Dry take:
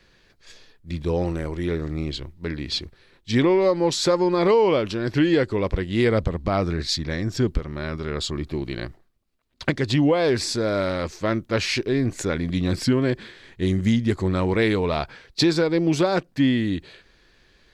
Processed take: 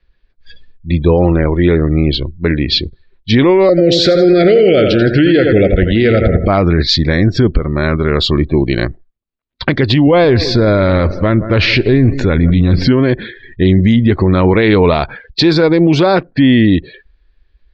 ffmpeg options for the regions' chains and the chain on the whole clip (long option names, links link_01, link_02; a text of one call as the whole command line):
ffmpeg -i in.wav -filter_complex "[0:a]asettb=1/sr,asplit=3[link_01][link_02][link_03];[link_01]atrim=end=3.694[link_04];[link_02]atrim=start=3.69:end=6.48,asetpts=PTS-STARTPTS,afade=type=in:duration=0.004:curve=qsin,afade=type=out:start_time=2.786:duration=0.004:curve=qsin,asuperstop=centerf=980:order=20:qfactor=1.9,aecho=1:1:87|174|261|348|435:0.376|0.169|0.0761|0.0342|0.0154,atrim=end_sample=123039[link_05];[link_03]atrim=start=6.476[link_06];[link_04][link_05]acrossfade=duration=0.004:curve1=hsin:curve2=qsin[link_07];[link_07][link_06]acrossfade=duration=0.004:curve1=qsin:curve2=hsin,asettb=1/sr,asplit=3[link_08][link_09][link_10];[link_08]atrim=end=10.074[link_11];[link_09]atrim=start=10.07:end=12.87,asetpts=PTS-STARTPTS,afade=type=in:duration=0.004:curve=qsin,afade=type=out:start_time=2.796:duration=0.004:curve=qsin,lowpass=5200,lowshelf=frequency=140:gain=11.5,aecho=1:1:170|340|510|680|850:0.112|0.0617|0.0339|0.0187|0.0103,atrim=end_sample=123480[link_12];[link_10]atrim=start=12.866[link_13];[link_11][link_12]acrossfade=duration=0.004:curve1=hsin:curve2=qsin[link_14];[link_14][link_13]acrossfade=duration=0.004:curve1=qsin:curve2=hsin,afftdn=noise_reduction=27:noise_floor=-42,lowpass=frequency=4400:width=0.5412,lowpass=frequency=4400:width=1.3066,alimiter=level_in=17dB:limit=-1dB:release=50:level=0:latency=1,volume=-1dB" out.wav